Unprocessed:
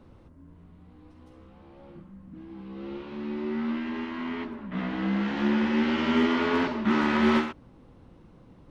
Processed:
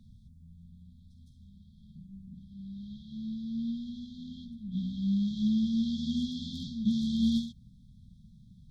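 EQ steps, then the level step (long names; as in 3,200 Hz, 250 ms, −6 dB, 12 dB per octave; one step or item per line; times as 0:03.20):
linear-phase brick-wall band-stop 240–3,200 Hz
0.0 dB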